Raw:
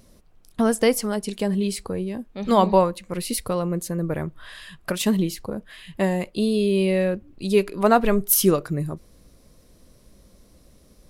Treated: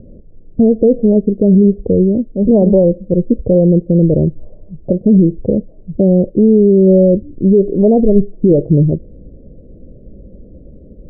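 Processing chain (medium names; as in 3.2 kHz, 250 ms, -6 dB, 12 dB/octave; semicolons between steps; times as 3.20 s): steep low-pass 570 Hz 48 dB/octave; loudness maximiser +18 dB; trim -1 dB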